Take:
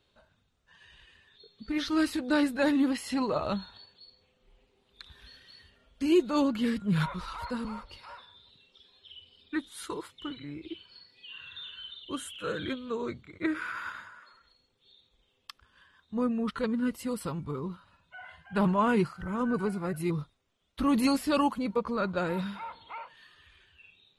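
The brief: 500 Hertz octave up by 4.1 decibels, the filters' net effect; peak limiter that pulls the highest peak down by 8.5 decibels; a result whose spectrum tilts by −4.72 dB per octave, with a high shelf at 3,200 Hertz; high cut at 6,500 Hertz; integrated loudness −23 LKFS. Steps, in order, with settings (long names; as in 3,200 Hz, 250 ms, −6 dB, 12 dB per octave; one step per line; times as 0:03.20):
low-pass filter 6,500 Hz
parametric band 500 Hz +5 dB
high-shelf EQ 3,200 Hz +4 dB
level +8.5 dB
brickwall limiter −12 dBFS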